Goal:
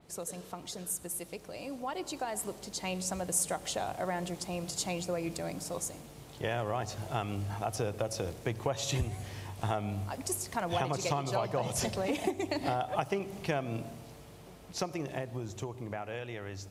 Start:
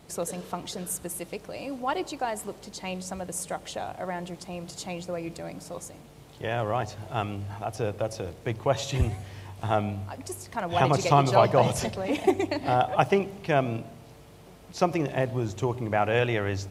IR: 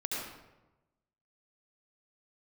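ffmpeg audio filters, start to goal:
-filter_complex "[0:a]acompressor=threshold=-28dB:ratio=8,asplit=2[a][b];[1:a]atrim=start_sample=2205[c];[b][c]afir=irnorm=-1:irlink=0,volume=-23.5dB[d];[a][d]amix=inputs=2:normalize=0,dynaudnorm=f=360:g=13:m=7.5dB,adynamicequalizer=threshold=0.00501:dfrequency=4500:dqfactor=0.7:tfrequency=4500:tqfactor=0.7:attack=5:release=100:ratio=0.375:range=3:mode=boostabove:tftype=highshelf,volume=-8dB"

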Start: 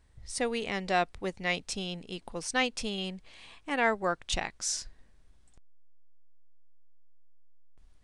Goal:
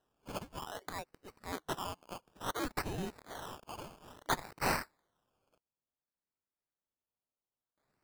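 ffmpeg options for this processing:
-filter_complex "[0:a]asettb=1/sr,asplit=3[a][b][c];[a]atrim=end=2.694[d];[b]atrim=start=2.69:end=4.69,asetpts=PTS-STARTPTS,afade=t=in:d=0.004:c=qsin,afade=t=out:st=1.996:d=0.004:c=qsin,aeval=exprs='val(0)+0.5*0.0126*sgn(val(0))':c=same[e];[c]atrim=start=4.686[f];[d][e]acrossfade=d=0.004:c1=hsin:c2=qsin[g];[g][f]acrossfade=d=0.004:c1=qsin:c2=hsin,afftfilt=real='re*between(b*sr/4096,2900,7200)':imag='im*between(b*sr/4096,2900,7200)':win_size=4096:overlap=0.75,acrusher=samples=18:mix=1:aa=0.000001:lfo=1:lforange=10.8:lforate=0.58,volume=1.5dB"

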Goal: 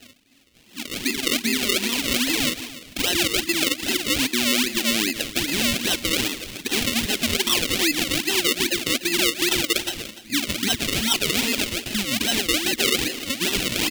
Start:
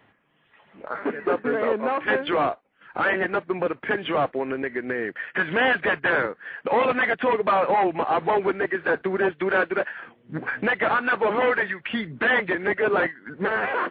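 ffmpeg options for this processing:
-filter_complex "[0:a]acrusher=bits=7:mode=log:mix=0:aa=0.000001,aphaser=in_gain=1:out_gain=1:delay=2.8:decay=0.38:speed=1.4:type=sinusoidal,firequalizer=gain_entry='entry(120,0);entry(170,-11);entry(260,15);entry(400,3);entry(630,-23);entry(980,-3)':delay=0.05:min_phase=1,asetrate=40440,aresample=44100,atempo=1.09051,asplit=2[a][b];[b]aecho=0:1:169:0.133[c];[a][c]amix=inputs=2:normalize=0,alimiter=limit=-19dB:level=0:latency=1:release=121,acrusher=samples=37:mix=1:aa=0.000001:lfo=1:lforange=37:lforate=2.5,highshelf=f=1.8k:t=q:w=1.5:g=13.5,asplit=2[d][e];[e]aecho=0:1:293:0.158[f];[d][f]amix=inputs=2:normalize=0"

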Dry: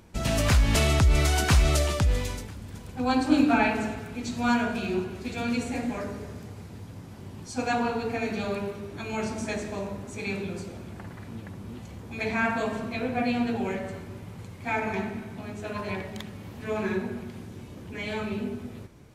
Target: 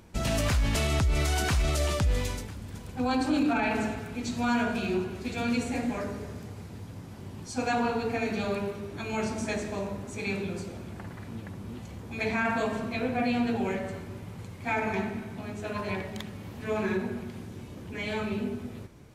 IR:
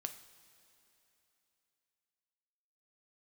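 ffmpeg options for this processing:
-af "alimiter=limit=-18.5dB:level=0:latency=1:release=22"

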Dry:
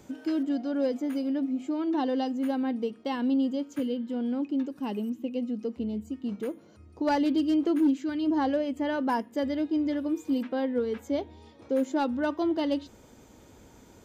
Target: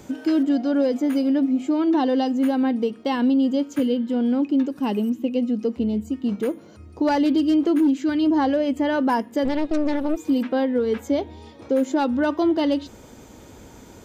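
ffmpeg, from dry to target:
-filter_complex "[0:a]asettb=1/sr,asplit=3[a][b][c];[a]atrim=end=9.454[d];[b]atrim=start=9.45:end=10.17,asetpts=PTS-STARTPTS,afade=t=in:d=0.004:c=qsin,afade=t=out:st=0.716:d=0.004:c=qsin,aeval=exprs='0.106*(cos(1*acos(clip(val(0)/0.106,-1,1)))-cos(1*PI/2))+0.0473*(cos(4*acos(clip(val(0)/0.106,-1,1)))-cos(4*PI/2))+0.0211*(cos(6*acos(clip(val(0)/0.106,-1,1)))-cos(6*PI/2))+0.00944*(cos(8*acos(clip(val(0)/0.106,-1,1)))-cos(8*PI/2))':c=same[e];[c]atrim=start=10.166[f];[d][e]acrossfade=d=0.004:c1=hsin:c2=qsin[g];[g][f]acrossfade=d=0.004:c1=qsin:c2=hsin,acontrast=89,alimiter=limit=-14.5dB:level=0:latency=1:release=133,volume=1.5dB"

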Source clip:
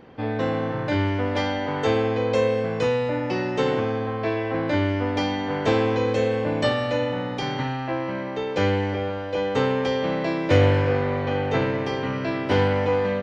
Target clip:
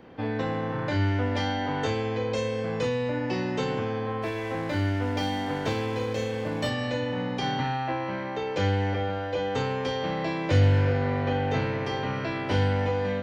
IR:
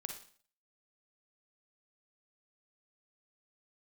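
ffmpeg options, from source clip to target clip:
-filter_complex "[0:a]acrossover=split=210|3000[a][b][c];[b]acompressor=threshold=-25dB:ratio=6[d];[a][d][c]amix=inputs=3:normalize=0,asettb=1/sr,asplit=3[e][f][g];[e]atrim=end=4.224[h];[f]atrim=start=4.22:end=6.68,asetpts=PTS-STARTPTS,afade=t=in:d=0.004:c=qsin,afade=t=out:st=2.456:d=0.004:c=qsin,aeval=exprs='sgn(val(0))*max(abs(val(0))-0.00794,0)':c=same[i];[g]atrim=start=6.676[j];[h][i]acrossfade=d=0.004:c1=hsin:c2=qsin[k];[k][j]acrossfade=d=0.004:c1=qsin:c2=hsin[l];[1:a]atrim=start_sample=2205,atrim=end_sample=3969,asetrate=79380,aresample=44100[m];[l][m]afir=irnorm=-1:irlink=0,volume=6.5dB"

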